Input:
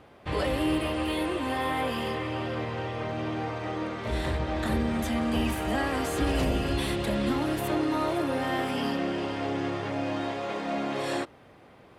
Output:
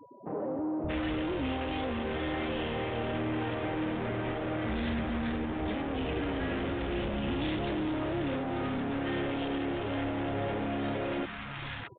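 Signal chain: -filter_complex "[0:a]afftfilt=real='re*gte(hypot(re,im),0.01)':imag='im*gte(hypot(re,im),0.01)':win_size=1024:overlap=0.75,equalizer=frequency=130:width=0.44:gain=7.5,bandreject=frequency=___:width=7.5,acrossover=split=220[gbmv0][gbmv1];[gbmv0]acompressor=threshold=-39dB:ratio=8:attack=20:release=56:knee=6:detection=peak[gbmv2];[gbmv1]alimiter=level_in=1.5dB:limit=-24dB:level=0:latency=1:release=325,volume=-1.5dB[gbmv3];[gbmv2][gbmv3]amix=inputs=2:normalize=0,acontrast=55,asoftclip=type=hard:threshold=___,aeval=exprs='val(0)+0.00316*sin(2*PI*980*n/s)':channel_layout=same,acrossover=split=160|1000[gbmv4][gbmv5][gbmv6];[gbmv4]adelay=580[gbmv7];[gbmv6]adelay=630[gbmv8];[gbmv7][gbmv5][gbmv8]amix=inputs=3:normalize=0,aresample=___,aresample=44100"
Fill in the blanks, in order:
1100, -29.5dB, 8000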